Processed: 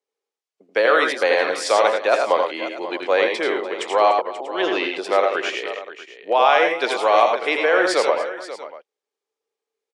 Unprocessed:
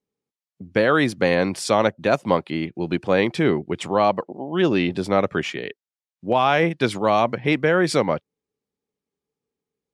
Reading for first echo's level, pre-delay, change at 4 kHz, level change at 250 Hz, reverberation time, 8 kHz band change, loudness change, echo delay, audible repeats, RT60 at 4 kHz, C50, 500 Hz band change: -5.5 dB, no reverb, +3.5 dB, -8.5 dB, no reverb, +2.0 dB, +2.0 dB, 83 ms, 4, no reverb, no reverb, +2.5 dB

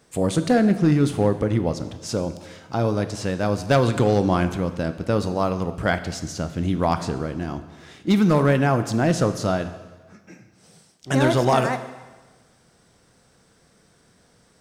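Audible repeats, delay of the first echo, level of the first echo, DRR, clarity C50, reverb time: no echo, no echo, no echo, 10.0 dB, 12.0 dB, 1.3 s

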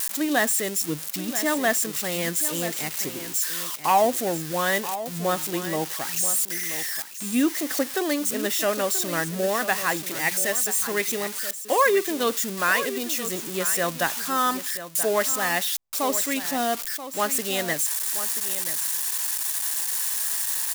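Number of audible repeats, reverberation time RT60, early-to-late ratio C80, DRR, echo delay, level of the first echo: 1, no reverb, no reverb, no reverb, 982 ms, -12.0 dB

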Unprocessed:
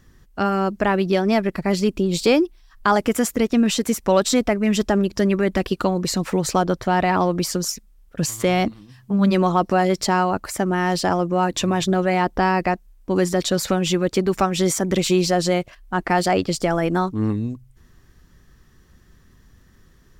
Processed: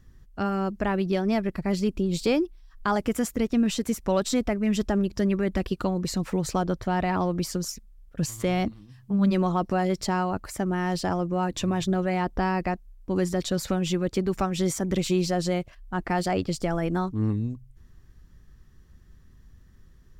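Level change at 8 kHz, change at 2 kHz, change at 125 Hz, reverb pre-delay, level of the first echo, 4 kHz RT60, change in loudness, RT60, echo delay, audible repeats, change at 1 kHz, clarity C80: -8.5 dB, -8.5 dB, -3.5 dB, no reverb, no echo, no reverb, -6.0 dB, no reverb, no echo, no echo, -8.0 dB, no reverb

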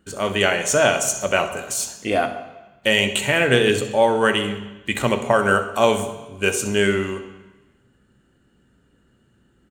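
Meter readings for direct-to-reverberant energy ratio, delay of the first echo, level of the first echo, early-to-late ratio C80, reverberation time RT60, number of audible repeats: 7.0 dB, 64 ms, -16.0 dB, 12.0 dB, 1.0 s, 1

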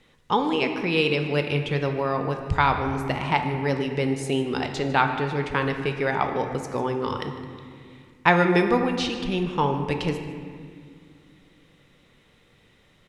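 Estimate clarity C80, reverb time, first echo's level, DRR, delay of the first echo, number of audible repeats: 7.5 dB, 2.1 s, -18.0 dB, 5.0 dB, 152 ms, 1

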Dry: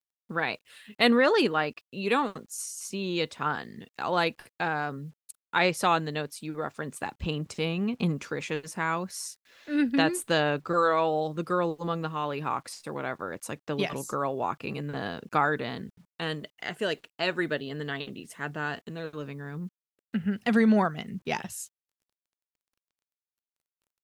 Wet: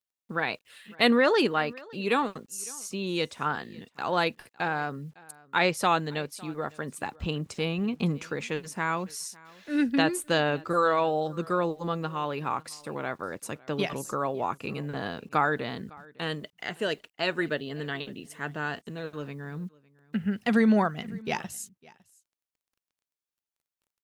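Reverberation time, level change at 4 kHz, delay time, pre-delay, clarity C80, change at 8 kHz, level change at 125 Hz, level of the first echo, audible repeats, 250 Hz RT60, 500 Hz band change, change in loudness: no reverb, 0.0 dB, 556 ms, no reverb, no reverb, 0.0 dB, 0.0 dB, -23.5 dB, 1, no reverb, 0.0 dB, 0.0 dB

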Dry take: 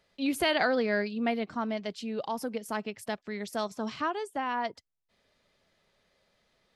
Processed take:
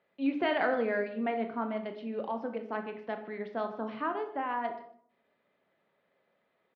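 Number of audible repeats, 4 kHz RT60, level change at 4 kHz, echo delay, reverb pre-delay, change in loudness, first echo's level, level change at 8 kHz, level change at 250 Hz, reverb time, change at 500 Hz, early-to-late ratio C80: 1, 0.40 s, -10.5 dB, 152 ms, 18 ms, -2.0 dB, -20.0 dB, under -35 dB, -2.0 dB, 0.60 s, -1.0 dB, 12.0 dB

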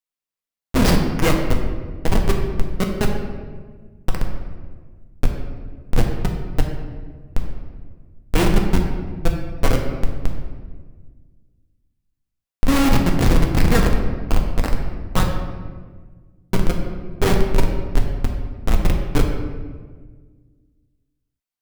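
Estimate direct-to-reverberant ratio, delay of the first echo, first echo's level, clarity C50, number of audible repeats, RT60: 1.0 dB, no echo, no echo, 4.5 dB, no echo, 1.5 s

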